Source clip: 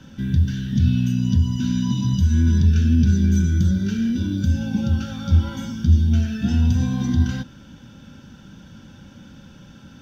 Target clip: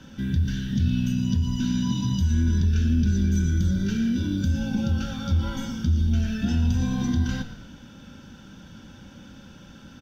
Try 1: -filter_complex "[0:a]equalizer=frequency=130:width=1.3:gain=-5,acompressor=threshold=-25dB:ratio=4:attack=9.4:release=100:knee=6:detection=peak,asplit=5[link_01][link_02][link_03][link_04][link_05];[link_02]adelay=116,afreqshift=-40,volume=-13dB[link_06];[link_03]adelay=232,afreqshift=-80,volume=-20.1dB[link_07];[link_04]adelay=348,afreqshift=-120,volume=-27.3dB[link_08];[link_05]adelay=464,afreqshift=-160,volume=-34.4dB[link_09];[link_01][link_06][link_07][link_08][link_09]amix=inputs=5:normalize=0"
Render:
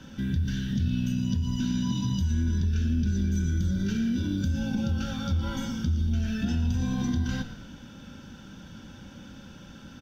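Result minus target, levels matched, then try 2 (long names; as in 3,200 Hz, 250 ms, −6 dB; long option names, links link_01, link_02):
downward compressor: peak gain reduction +5 dB
-filter_complex "[0:a]equalizer=frequency=130:width=1.3:gain=-5,acompressor=threshold=-18.5dB:ratio=4:attack=9.4:release=100:knee=6:detection=peak,asplit=5[link_01][link_02][link_03][link_04][link_05];[link_02]adelay=116,afreqshift=-40,volume=-13dB[link_06];[link_03]adelay=232,afreqshift=-80,volume=-20.1dB[link_07];[link_04]adelay=348,afreqshift=-120,volume=-27.3dB[link_08];[link_05]adelay=464,afreqshift=-160,volume=-34.4dB[link_09];[link_01][link_06][link_07][link_08][link_09]amix=inputs=5:normalize=0"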